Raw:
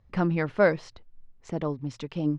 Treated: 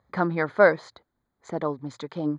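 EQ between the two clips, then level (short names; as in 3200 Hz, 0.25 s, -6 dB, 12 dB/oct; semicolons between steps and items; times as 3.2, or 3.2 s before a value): running mean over 16 samples; HPF 53 Hz; tilt +4.5 dB/oct; +8.0 dB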